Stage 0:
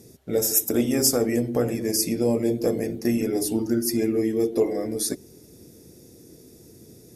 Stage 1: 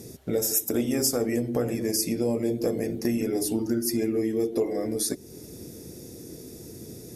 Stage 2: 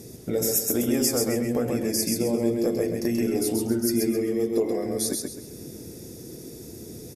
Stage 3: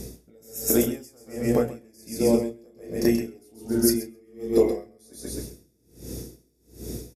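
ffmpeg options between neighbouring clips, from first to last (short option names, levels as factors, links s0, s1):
-af "acompressor=threshold=0.0141:ratio=2,volume=2.11"
-af "aecho=1:1:132|264|396|528:0.668|0.207|0.0642|0.0199"
-filter_complex "[0:a]aeval=exprs='val(0)+0.00631*(sin(2*PI*60*n/s)+sin(2*PI*2*60*n/s)/2+sin(2*PI*3*60*n/s)/3+sin(2*PI*4*60*n/s)/4+sin(2*PI*5*60*n/s)/5)':c=same,asplit=2[s0][s1];[s1]adelay=31,volume=0.398[s2];[s0][s2]amix=inputs=2:normalize=0,aeval=exprs='val(0)*pow(10,-35*(0.5-0.5*cos(2*PI*1.3*n/s))/20)':c=same,volume=1.78"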